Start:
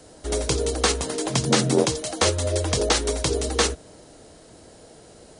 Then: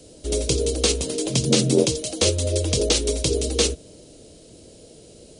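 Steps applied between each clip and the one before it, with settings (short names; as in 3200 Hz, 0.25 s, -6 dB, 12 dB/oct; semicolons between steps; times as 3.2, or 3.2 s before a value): band shelf 1200 Hz -13 dB; gain +2 dB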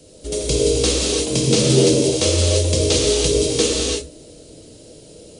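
non-linear reverb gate 0.36 s flat, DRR -3.5 dB; gain -1 dB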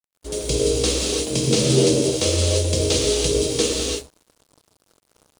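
crossover distortion -37 dBFS; gain -2 dB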